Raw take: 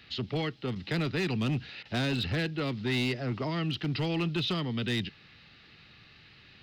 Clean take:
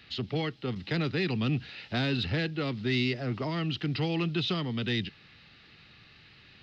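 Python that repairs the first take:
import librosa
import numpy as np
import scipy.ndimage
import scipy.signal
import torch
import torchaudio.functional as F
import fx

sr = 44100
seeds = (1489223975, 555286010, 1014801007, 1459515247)

y = fx.fix_declip(x, sr, threshold_db=-24.5)
y = fx.fix_interpolate(y, sr, at_s=(1.83,), length_ms=21.0)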